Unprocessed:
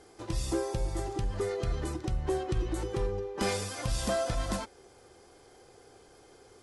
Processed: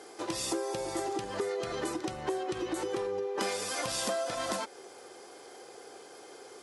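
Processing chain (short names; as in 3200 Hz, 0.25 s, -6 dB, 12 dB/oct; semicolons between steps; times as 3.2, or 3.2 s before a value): HPF 320 Hz 12 dB/oct; compressor 6:1, threshold -38 dBFS, peak gain reduction 11 dB; gain +8 dB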